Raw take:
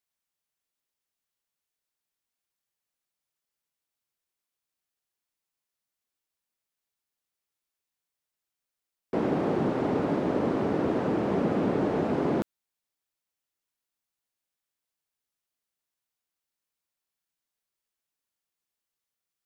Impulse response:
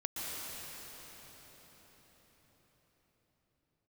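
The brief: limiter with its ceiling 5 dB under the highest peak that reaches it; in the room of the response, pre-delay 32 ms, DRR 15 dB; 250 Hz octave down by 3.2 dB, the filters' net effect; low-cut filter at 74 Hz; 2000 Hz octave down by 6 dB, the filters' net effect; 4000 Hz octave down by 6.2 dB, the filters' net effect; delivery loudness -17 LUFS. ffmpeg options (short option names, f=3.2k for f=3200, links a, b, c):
-filter_complex "[0:a]highpass=74,equalizer=f=250:t=o:g=-4,equalizer=f=2k:t=o:g=-7,equalizer=f=4k:t=o:g=-5.5,alimiter=limit=-21dB:level=0:latency=1,asplit=2[a][b];[1:a]atrim=start_sample=2205,adelay=32[c];[b][c]afir=irnorm=-1:irlink=0,volume=-19dB[d];[a][d]amix=inputs=2:normalize=0,volume=14dB"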